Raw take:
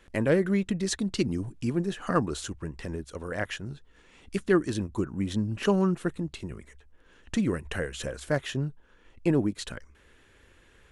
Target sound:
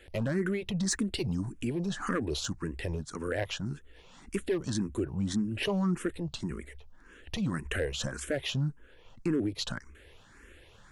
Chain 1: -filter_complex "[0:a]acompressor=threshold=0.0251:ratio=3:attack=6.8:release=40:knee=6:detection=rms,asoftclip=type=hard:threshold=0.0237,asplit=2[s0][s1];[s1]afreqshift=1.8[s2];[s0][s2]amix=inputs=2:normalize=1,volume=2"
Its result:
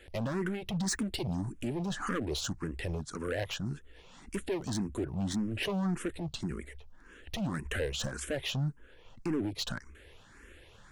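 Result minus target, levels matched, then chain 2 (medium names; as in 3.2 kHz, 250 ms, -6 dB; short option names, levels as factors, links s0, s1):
hard clipper: distortion +12 dB
-filter_complex "[0:a]acompressor=threshold=0.0251:ratio=3:attack=6.8:release=40:knee=6:detection=rms,asoftclip=type=hard:threshold=0.0501,asplit=2[s0][s1];[s1]afreqshift=1.8[s2];[s0][s2]amix=inputs=2:normalize=1,volume=2"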